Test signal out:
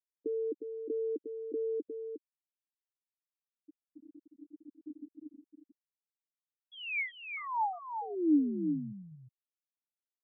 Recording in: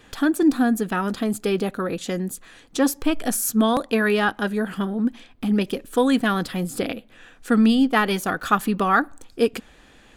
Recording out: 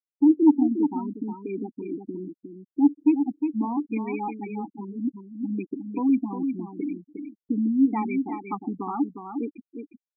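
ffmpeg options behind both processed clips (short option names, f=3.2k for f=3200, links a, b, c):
-filter_complex "[0:a]acontrast=36,asplit=3[a][b][c];[a]bandpass=f=300:t=q:w=8,volume=0dB[d];[b]bandpass=f=870:t=q:w=8,volume=-6dB[e];[c]bandpass=f=2.24k:t=q:w=8,volume=-9dB[f];[d][e][f]amix=inputs=3:normalize=0,asoftclip=type=hard:threshold=-10dB,afftfilt=real='re*gte(hypot(re,im),0.0794)':imag='im*gte(hypot(re,im),0.0794)':win_size=1024:overlap=0.75,asplit=2[g][h];[h]aecho=0:1:358:0.447[i];[g][i]amix=inputs=2:normalize=0"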